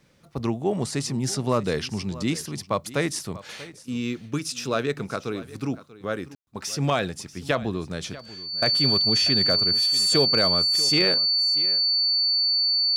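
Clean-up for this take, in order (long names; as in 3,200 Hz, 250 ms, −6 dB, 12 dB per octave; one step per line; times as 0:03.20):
clipped peaks rebuilt −11 dBFS
notch filter 4,500 Hz, Q 30
ambience match 0:06.35–0:06.47
echo removal 638 ms −17.5 dB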